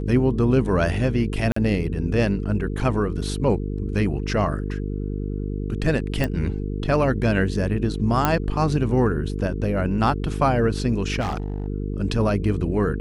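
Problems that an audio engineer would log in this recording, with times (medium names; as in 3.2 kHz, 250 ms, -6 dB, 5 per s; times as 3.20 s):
buzz 50 Hz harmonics 9 -27 dBFS
1.52–1.56 s: dropout 44 ms
6.24 s: pop
8.25 s: pop -4 dBFS
11.20–11.68 s: clipped -22 dBFS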